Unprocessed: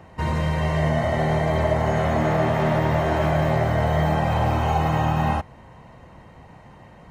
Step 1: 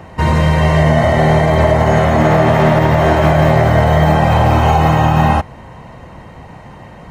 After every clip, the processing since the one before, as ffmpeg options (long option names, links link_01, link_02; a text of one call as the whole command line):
ffmpeg -i in.wav -af "alimiter=level_in=12dB:limit=-1dB:release=50:level=0:latency=1,volume=-1dB" out.wav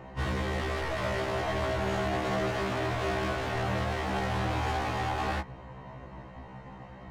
ffmpeg -i in.wav -af "volume=17.5dB,asoftclip=hard,volume=-17.5dB,adynamicsmooth=sensitivity=6.5:basefreq=4900,afftfilt=real='re*1.73*eq(mod(b,3),0)':imag='im*1.73*eq(mod(b,3),0)':win_size=2048:overlap=0.75,volume=-8dB" out.wav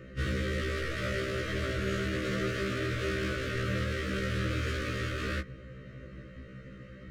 ffmpeg -i in.wav -af "asuperstop=centerf=840:order=12:qfactor=1.4" out.wav